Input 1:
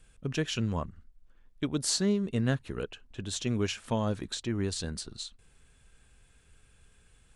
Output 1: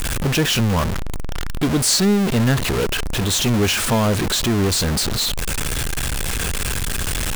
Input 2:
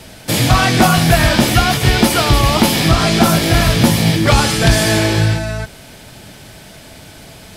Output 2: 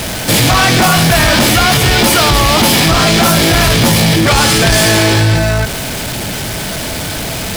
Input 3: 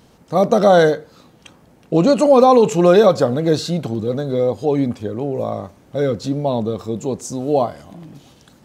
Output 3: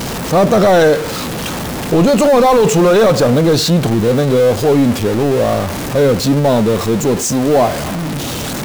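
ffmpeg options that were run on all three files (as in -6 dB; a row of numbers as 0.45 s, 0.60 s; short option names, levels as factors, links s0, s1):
-af "aeval=exprs='val(0)+0.5*0.075*sgn(val(0))':c=same,apsyclip=4.22,volume=0.501"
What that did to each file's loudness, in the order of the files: +13.0 LU, +2.5 LU, +4.0 LU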